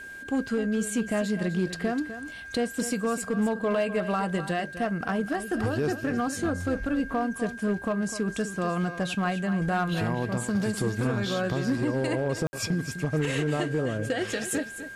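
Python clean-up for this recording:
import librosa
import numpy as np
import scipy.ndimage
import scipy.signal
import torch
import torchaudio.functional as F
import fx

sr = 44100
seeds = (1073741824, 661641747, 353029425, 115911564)

y = fx.fix_declip(x, sr, threshold_db=-19.5)
y = fx.notch(y, sr, hz=1600.0, q=30.0)
y = fx.fix_ambience(y, sr, seeds[0], print_start_s=2.04, print_end_s=2.54, start_s=12.47, end_s=12.53)
y = fx.fix_echo_inverse(y, sr, delay_ms=252, level_db=-12.0)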